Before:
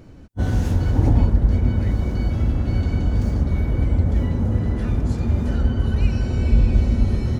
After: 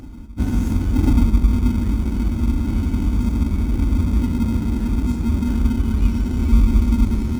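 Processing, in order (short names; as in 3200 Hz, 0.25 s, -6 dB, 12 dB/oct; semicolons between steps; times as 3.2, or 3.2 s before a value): graphic EQ 125/250/500/1000/2000/4000 Hz -12/+8/-12/-8/-7/-11 dB; in parallel at -10 dB: sample-and-hold 38×; on the sum: low shelf 220 Hz -3 dB; reverse echo 1.043 s -22.5 dB; gain +3.5 dB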